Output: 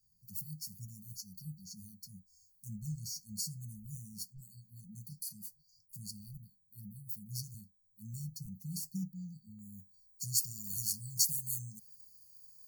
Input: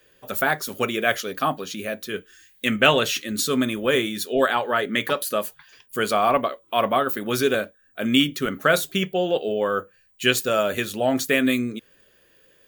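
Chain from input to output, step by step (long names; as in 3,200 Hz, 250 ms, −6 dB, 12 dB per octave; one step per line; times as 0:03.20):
linear-phase brick-wall band-stop 200–4,300 Hz
high-shelf EQ 2,100 Hz −4 dB, from 0:09.59 +5 dB, from 0:10.64 +11 dB
level −8 dB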